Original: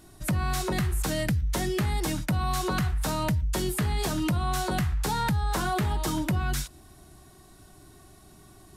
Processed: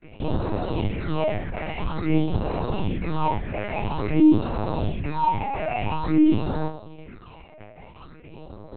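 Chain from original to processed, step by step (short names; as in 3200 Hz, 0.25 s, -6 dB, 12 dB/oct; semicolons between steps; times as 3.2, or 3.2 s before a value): rattling part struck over -29 dBFS, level -42 dBFS; HPF 87 Hz 12 dB/oct; fuzz box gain 45 dB, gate -51 dBFS; sample-and-hold 26×; resonator bank G#2 fifth, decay 0.38 s; phaser stages 6, 0.49 Hz, lowest notch 290–2500 Hz; LPC vocoder at 8 kHz pitch kept; gain +4.5 dB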